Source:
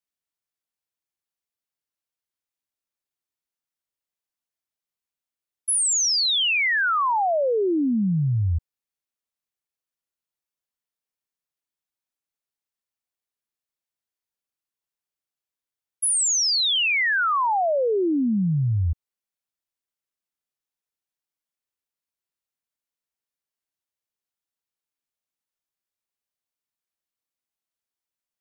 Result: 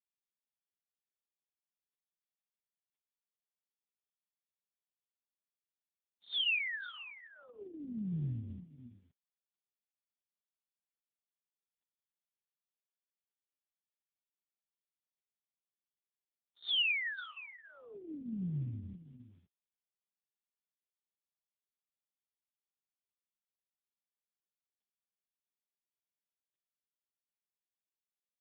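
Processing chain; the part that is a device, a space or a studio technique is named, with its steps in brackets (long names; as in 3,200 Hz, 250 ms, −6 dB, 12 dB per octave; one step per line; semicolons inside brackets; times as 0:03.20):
Chebyshev band-stop filter 130–4,300 Hz, order 2
satellite phone (band-pass filter 320–3,200 Hz; single-tap delay 518 ms −14.5 dB; level +3.5 dB; AMR narrowband 4.75 kbit/s 8,000 Hz)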